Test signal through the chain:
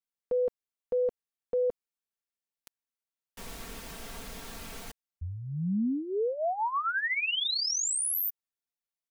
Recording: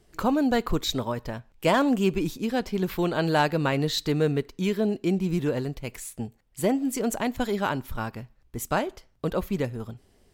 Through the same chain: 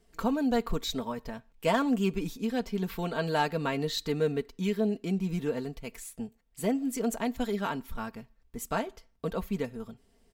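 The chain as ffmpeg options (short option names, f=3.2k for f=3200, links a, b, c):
-af "aecho=1:1:4.4:0.6,volume=-6.5dB"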